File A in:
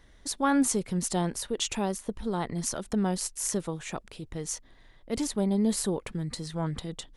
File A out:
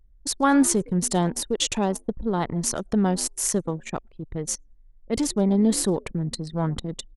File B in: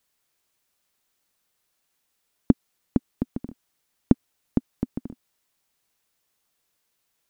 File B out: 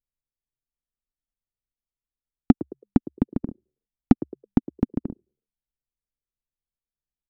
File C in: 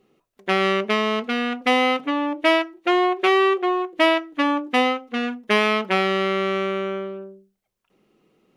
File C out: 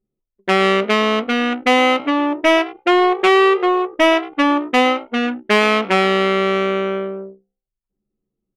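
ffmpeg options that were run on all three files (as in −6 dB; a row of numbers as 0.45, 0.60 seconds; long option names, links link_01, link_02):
-filter_complex "[0:a]asplit=4[link_01][link_02][link_03][link_04];[link_02]adelay=108,afreqshift=66,volume=-20dB[link_05];[link_03]adelay=216,afreqshift=132,volume=-27.3dB[link_06];[link_04]adelay=324,afreqshift=198,volume=-34.7dB[link_07];[link_01][link_05][link_06][link_07]amix=inputs=4:normalize=0,acontrast=78,anlmdn=63.1,volume=-1dB"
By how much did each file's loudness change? +6.0, +3.0, +5.0 LU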